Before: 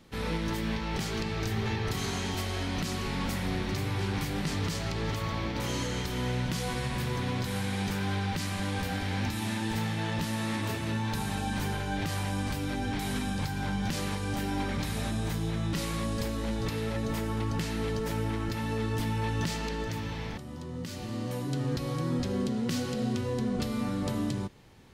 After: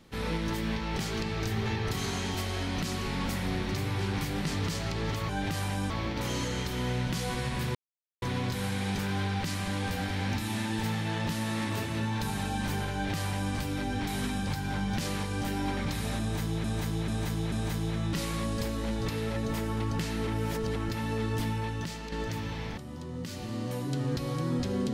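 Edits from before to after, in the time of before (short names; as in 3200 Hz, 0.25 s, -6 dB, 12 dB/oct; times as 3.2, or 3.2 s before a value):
7.14 insert silence 0.47 s
11.84–12.45 copy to 5.29
15.12–15.56 loop, 4 plays
17.87–18.36 reverse
19.06–19.72 fade out quadratic, to -6.5 dB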